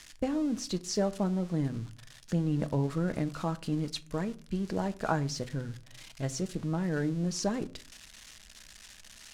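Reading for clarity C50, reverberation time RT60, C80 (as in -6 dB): 21.0 dB, 0.45 s, 26.0 dB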